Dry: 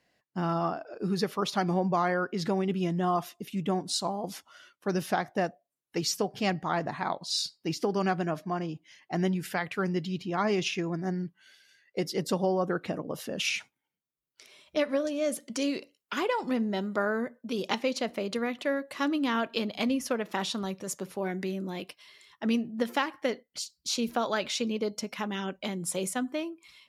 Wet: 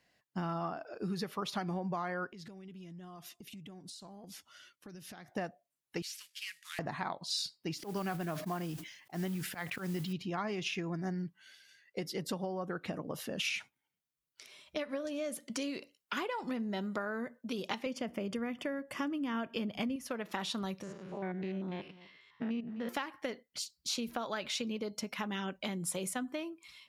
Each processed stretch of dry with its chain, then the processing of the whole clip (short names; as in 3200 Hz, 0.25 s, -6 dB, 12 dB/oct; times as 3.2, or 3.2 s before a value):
2.29–5.32 bell 900 Hz -8 dB 1.6 oct + compressor 12:1, threshold -44 dBFS
6.02–6.79 CVSD 64 kbps + inverse Chebyshev high-pass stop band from 780 Hz, stop band 50 dB + compressor, threshold -35 dBFS
7.77–10.13 auto swell 0.137 s + modulation noise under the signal 20 dB + sustainer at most 86 dB/s
17.86–19.96 Butterworth band-stop 4000 Hz, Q 4.5 + low shelf 340 Hz +9.5 dB
20.83–22.89 stepped spectrum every 0.1 s + LPF 2700 Hz + echo 0.255 s -18.5 dB
whole clip: dynamic EQ 6200 Hz, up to -4 dB, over -48 dBFS, Q 0.89; compressor, threshold -31 dBFS; bell 410 Hz -4 dB 2 oct